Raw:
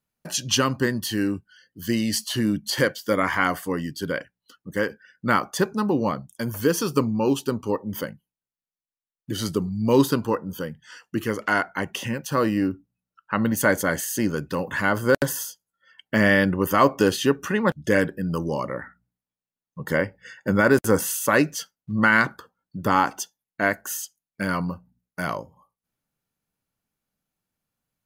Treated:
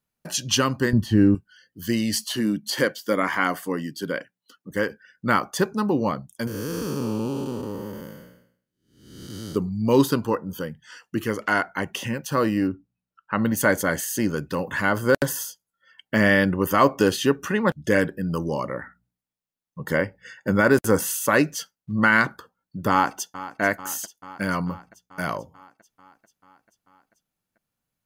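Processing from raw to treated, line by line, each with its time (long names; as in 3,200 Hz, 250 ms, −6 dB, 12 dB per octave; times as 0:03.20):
0:00.93–0:01.35: spectral tilt −4 dB per octave
0:02.32–0:04.71: Chebyshev high-pass filter 200 Hz
0:06.47–0:09.56: spectrum smeared in time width 443 ms
0:12.67–0:13.39: high-shelf EQ 5,800 Hz −11.5 dB
0:22.90–0:23.61: delay throw 440 ms, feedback 70%, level −15 dB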